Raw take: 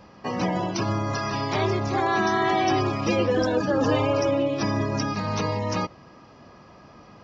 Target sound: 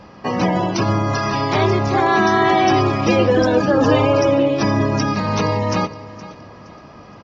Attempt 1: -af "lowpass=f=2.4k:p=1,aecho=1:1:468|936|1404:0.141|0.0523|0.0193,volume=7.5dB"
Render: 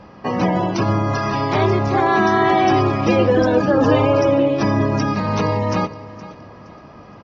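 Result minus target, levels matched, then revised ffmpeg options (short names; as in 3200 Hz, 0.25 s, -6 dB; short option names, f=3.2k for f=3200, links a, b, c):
8000 Hz band -5.0 dB
-af "lowpass=f=6k:p=1,aecho=1:1:468|936|1404:0.141|0.0523|0.0193,volume=7.5dB"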